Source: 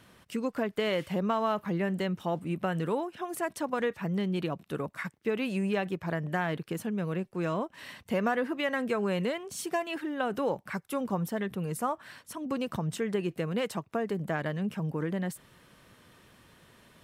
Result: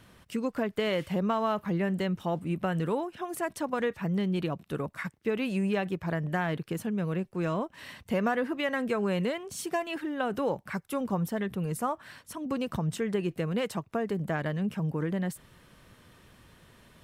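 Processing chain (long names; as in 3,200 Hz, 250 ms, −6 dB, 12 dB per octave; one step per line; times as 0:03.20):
low-shelf EQ 84 Hz +10.5 dB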